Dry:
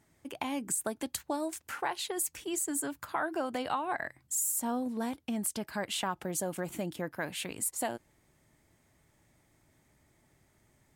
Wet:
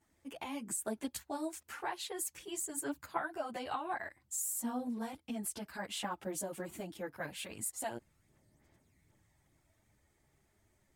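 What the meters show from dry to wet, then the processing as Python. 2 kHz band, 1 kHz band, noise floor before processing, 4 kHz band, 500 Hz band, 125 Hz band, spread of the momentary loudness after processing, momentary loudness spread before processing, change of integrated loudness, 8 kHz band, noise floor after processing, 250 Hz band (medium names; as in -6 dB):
-5.5 dB, -5.0 dB, -70 dBFS, -6.0 dB, -5.5 dB, -7.0 dB, 6 LU, 6 LU, -5.5 dB, -5.5 dB, -75 dBFS, -5.5 dB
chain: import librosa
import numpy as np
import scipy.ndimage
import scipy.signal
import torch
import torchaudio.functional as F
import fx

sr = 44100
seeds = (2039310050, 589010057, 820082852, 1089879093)

y = fx.chorus_voices(x, sr, voices=4, hz=1.3, base_ms=12, depth_ms=3.0, mix_pct=65)
y = F.gain(torch.from_numpy(y), -3.0).numpy()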